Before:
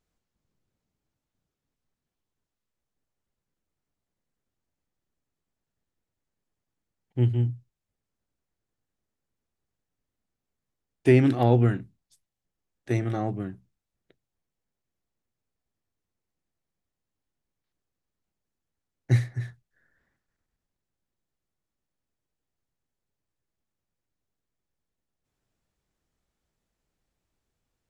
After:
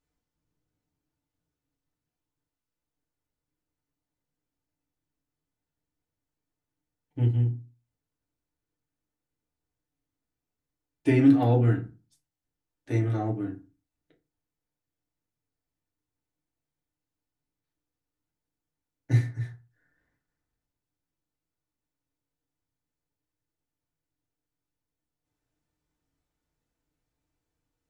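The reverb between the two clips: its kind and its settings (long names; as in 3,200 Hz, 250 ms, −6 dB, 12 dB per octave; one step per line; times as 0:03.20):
feedback delay network reverb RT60 0.31 s, low-frequency decay 1.25×, high-frequency decay 0.6×, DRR −1.5 dB
level −6.5 dB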